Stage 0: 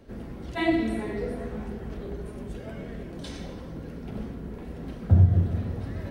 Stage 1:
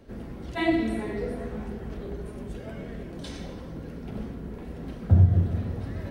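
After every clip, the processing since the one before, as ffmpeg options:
ffmpeg -i in.wav -af anull out.wav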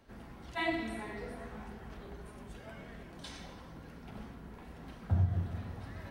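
ffmpeg -i in.wav -af "lowshelf=frequency=650:width_type=q:width=1.5:gain=-7,volume=-4.5dB" out.wav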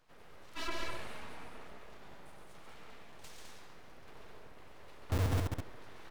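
ffmpeg -i in.wav -filter_complex "[0:a]acrossover=split=140[link_01][link_02];[link_01]acrusher=bits=4:mix=0:aa=0.000001[link_03];[link_02]aeval=exprs='abs(val(0))':channel_layout=same[link_04];[link_03][link_04]amix=inputs=2:normalize=0,aecho=1:1:139.9|207:0.631|0.562,volume=-3.5dB" out.wav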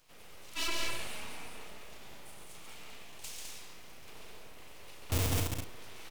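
ffmpeg -i in.wav -filter_complex "[0:a]aexciter=amount=2.4:drive=6.2:freq=2300,asplit=2[link_01][link_02];[link_02]adelay=37,volume=-8dB[link_03];[link_01][link_03]amix=inputs=2:normalize=0" out.wav

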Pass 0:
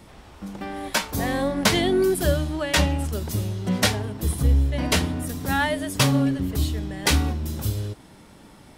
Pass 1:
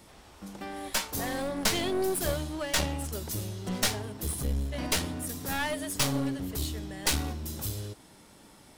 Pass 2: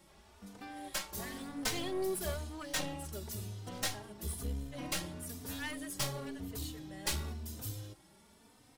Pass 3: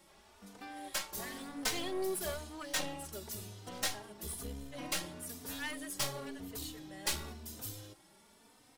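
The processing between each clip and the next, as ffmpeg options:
ffmpeg -i in.wav -af "bass=frequency=250:gain=-4,treble=frequency=4000:gain=6,aeval=exprs='clip(val(0),-1,0.0531)':channel_layout=same,volume=-5.5dB" out.wav
ffmpeg -i in.wav -filter_complex "[0:a]asplit=2[link_01][link_02];[link_02]adelay=3.2,afreqshift=1[link_03];[link_01][link_03]amix=inputs=2:normalize=1,volume=-5dB" out.wav
ffmpeg -i in.wav -af "equalizer=frequency=70:width=0.39:gain=-9,volume=1dB" out.wav

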